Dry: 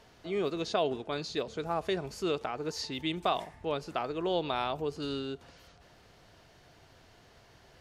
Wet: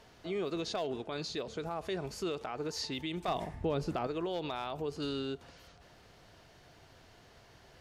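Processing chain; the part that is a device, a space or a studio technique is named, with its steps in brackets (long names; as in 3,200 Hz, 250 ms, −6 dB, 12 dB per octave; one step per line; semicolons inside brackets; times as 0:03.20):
clipper into limiter (hard clipping −21 dBFS, distortion −24 dB; brickwall limiter −27.5 dBFS, peak gain reduction 6.5 dB)
0:03.28–0:04.07: low-shelf EQ 440 Hz +11.5 dB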